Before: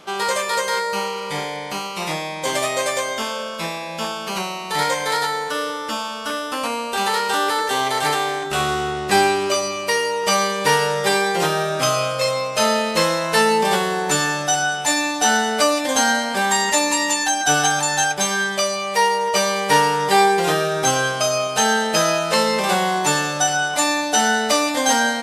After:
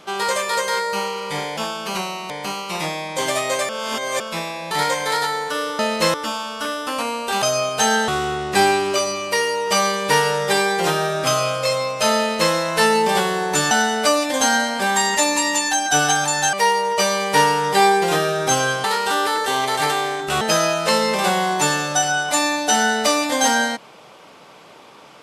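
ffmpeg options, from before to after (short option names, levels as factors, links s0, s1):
-filter_complex "[0:a]asplit=14[s0][s1][s2][s3][s4][s5][s6][s7][s8][s9][s10][s11][s12][s13];[s0]atrim=end=1.572[s14];[s1]atrim=start=3.978:end=4.712[s15];[s2]atrim=start=1.568:end=2.962[s16];[s3]atrim=start=2.958:end=3.472,asetpts=PTS-STARTPTS,areverse[s17];[s4]atrim=start=3.468:end=3.982[s18];[s5]atrim=start=4.708:end=5.792[s19];[s6]atrim=start=12.738:end=13.092[s20];[s7]atrim=start=5.788:end=7.072[s21];[s8]atrim=start=21.198:end=21.862[s22];[s9]atrim=start=8.638:end=14.272[s23];[s10]atrim=start=15.258:end=18.082[s24];[s11]atrim=start=18.888:end=21.202[s25];[s12]atrim=start=7.068:end=8.642[s26];[s13]atrim=start=21.858[s27];[s14][s15]acrossfade=d=0.004:c1=hsin:c2=hsin[s28];[s28][s16]acrossfade=d=0.004:c1=hsin:c2=hsin[s29];[s29][s17]acrossfade=d=0.004:c1=hsin:c2=hsin[s30];[s30][s18]acrossfade=d=0.004:c1=hsin:c2=hsin[s31];[s31][s19]acrossfade=d=0.004:c1=hsin:c2=hsin[s32];[s32][s20]acrossfade=d=0.004:c1=hsin:c2=hsin[s33];[s33][s21]acrossfade=d=0.004:c1=hsin:c2=hsin[s34];[s34][s22]acrossfade=d=0.004:c1=hsin:c2=hsin[s35];[s35][s23]acrossfade=d=0.004:c1=hsin:c2=hsin[s36];[s36][s24]acrossfade=d=0.004:c1=hsin:c2=hsin[s37];[s37][s25]acrossfade=d=0.004:c1=hsin:c2=hsin[s38];[s38][s26]acrossfade=d=0.004:c1=hsin:c2=hsin[s39];[s39][s27]acrossfade=d=0.004:c1=hsin:c2=hsin"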